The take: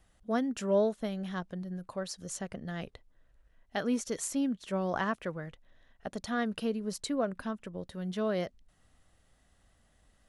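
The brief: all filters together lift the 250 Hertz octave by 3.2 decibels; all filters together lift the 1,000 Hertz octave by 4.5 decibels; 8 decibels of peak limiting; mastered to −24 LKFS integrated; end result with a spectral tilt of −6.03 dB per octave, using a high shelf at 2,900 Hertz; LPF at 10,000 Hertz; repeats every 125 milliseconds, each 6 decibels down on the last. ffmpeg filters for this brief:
ffmpeg -i in.wav -af "lowpass=10000,equalizer=frequency=250:width_type=o:gain=3.5,equalizer=frequency=1000:width_type=o:gain=6.5,highshelf=frequency=2900:gain=-5.5,alimiter=limit=-22dB:level=0:latency=1,aecho=1:1:125|250|375|500|625|750:0.501|0.251|0.125|0.0626|0.0313|0.0157,volume=8.5dB" out.wav

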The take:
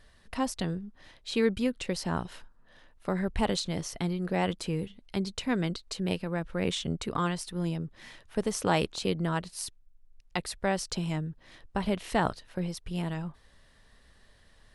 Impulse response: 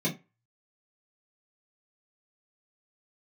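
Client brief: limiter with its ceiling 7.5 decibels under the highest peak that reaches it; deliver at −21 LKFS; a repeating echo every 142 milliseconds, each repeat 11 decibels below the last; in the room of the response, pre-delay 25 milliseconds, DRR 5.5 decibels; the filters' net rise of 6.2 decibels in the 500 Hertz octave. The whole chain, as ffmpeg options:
-filter_complex "[0:a]equalizer=frequency=500:width_type=o:gain=7.5,alimiter=limit=-17dB:level=0:latency=1,aecho=1:1:142|284|426:0.282|0.0789|0.0221,asplit=2[link_01][link_02];[1:a]atrim=start_sample=2205,adelay=25[link_03];[link_02][link_03]afir=irnorm=-1:irlink=0,volume=-13.5dB[link_04];[link_01][link_04]amix=inputs=2:normalize=0,volume=4dB"

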